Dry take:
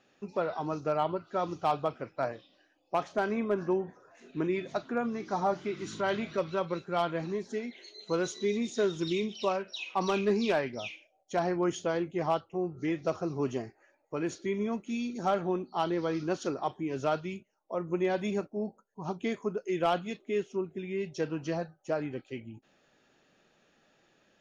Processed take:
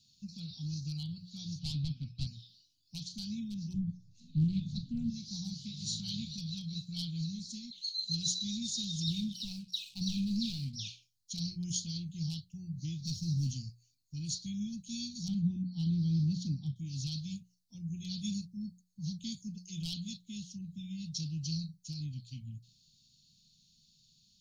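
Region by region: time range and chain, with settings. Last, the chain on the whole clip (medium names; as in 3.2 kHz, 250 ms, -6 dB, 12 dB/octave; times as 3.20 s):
1.59–2.27 s: distance through air 190 m + comb 7.5 ms, depth 67% + overdrive pedal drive 21 dB, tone 1.1 kHz, clips at -15 dBFS
3.74–5.10 s: tilt EQ -3.5 dB/octave + loudspeaker Doppler distortion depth 0.2 ms
9.07–10.76 s: low-pass 1.7 kHz 6 dB/octave + waveshaping leveller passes 1
13.05–13.51 s: waveshaping leveller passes 1 + Butterworth band-stop 1.1 kHz, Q 0.55
15.28–16.76 s: low-pass 1.4 kHz 6 dB/octave + peaking EQ 190 Hz +8.5 dB 2.7 oct
whole clip: inverse Chebyshev band-stop 370–1900 Hz, stop band 50 dB; peaking EQ 4.3 kHz +10 dB 0.46 oct; hum notches 60/120/180 Hz; trim +6.5 dB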